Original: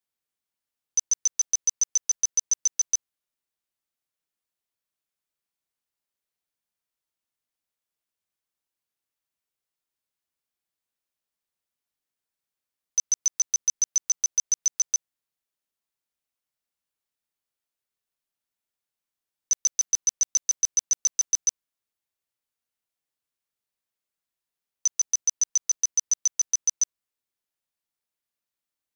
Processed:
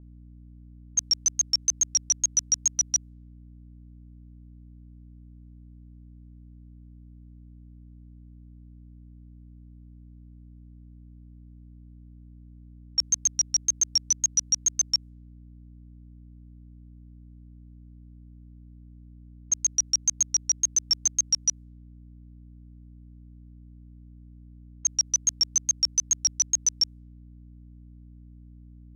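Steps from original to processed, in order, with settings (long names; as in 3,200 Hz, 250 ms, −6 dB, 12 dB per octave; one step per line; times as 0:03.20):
tape wow and flutter 140 cents
mains hum 60 Hz, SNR 16 dB
low-pass that shuts in the quiet parts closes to 1,400 Hz, open at −24 dBFS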